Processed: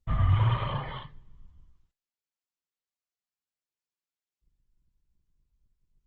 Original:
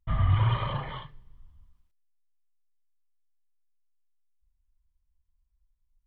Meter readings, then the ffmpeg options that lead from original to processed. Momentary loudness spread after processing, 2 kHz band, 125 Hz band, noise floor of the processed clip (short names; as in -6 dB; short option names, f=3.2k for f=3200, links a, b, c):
16 LU, -1.0 dB, 0.0 dB, under -85 dBFS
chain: -ar 48000 -c:a libopus -b:a 16k